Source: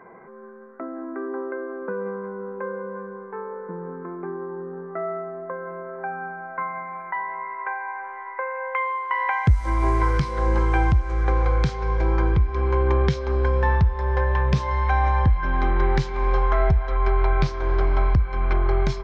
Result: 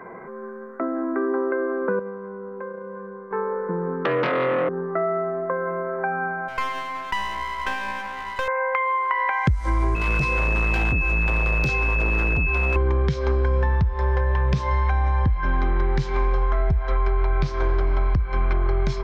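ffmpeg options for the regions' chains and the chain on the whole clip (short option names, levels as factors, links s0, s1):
-filter_complex "[0:a]asettb=1/sr,asplit=3[s0][s1][s2];[s0]atrim=end=1.994[s3];[s1]atrim=start=1.99:end=3.31,asetpts=PTS-STARTPTS,afade=t=in:d=0.004:c=qsin,afade=t=out:st=1.316:d=0.004:c=qsin,agate=range=0.398:threshold=0.0282:ratio=16:release=100:detection=peak,highshelf=f=4300:g=-10,acompressor=threshold=0.0126:ratio=4:attack=3.2:release=140:knee=1:detection=peak[s4];[s2]atrim=start=3.306[s5];[s3][s4]acrossfade=d=0.004:c1=hsin:c2=qsin[s6];[s6][s5]acrossfade=d=0.004:c1=qsin:c2=hsin,asettb=1/sr,asplit=3[s7][s8][s9];[s7]atrim=end=4.054[s10];[s8]atrim=start=4.05:end=4.69,asetpts=PTS-STARTPTS,afade=t=in:d=0.004:c=qsin,afade=t=out:st=0.636:d=0.004:c=qsin,aeval=exprs='0.075*sin(PI/2*3.16*val(0)/0.075)':c=same,afreqshift=130[s11];[s9]atrim=start=4.686[s12];[s10][s11]acrossfade=d=0.004:c1=hsin:c2=qsin[s13];[s13][s12]acrossfade=d=0.004:c1=qsin:c2=hsin,asettb=1/sr,asplit=3[s14][s15][s16];[s14]atrim=end=6.484[s17];[s15]atrim=start=6.48:end=8.48,asetpts=PTS-STARTPTS,afade=t=in:d=0.004:c=qsin,afade=t=out:st=1.996:d=0.004:c=qsin,highpass=f=680:p=1,aeval=exprs='clip(val(0),-1,0.00891)':c=same[s18];[s16]atrim=start=8.476[s19];[s17][s18]acrossfade=d=0.004:c1=hsin:c2=qsin[s20];[s20][s19]acrossfade=d=0.004:c1=qsin:c2=hsin,asettb=1/sr,asplit=3[s21][s22][s23];[s21]atrim=end=9.954[s24];[s22]atrim=start=9.95:end=12.76,asetpts=PTS-STARTPTS,afade=t=in:d=0.004:c=qsin,afade=t=out:st=2.806:d=0.004:c=qsin,asoftclip=type=hard:threshold=0.0596,aeval=exprs='val(0)+0.0447*sin(2*PI*2600*n/s)':c=same[s25];[s23]atrim=start=12.756[s26];[s24][s25]acrossfade=d=0.004:c1=hsin:c2=qsin[s27];[s27][s26]acrossfade=d=0.004:c1=qsin:c2=hsin,acrossover=split=310[s28][s29];[s29]acompressor=threshold=0.0501:ratio=6[s30];[s28][s30]amix=inputs=2:normalize=0,equalizer=f=810:t=o:w=0.22:g=-2.5,acompressor=threshold=0.0562:ratio=6,volume=2.37"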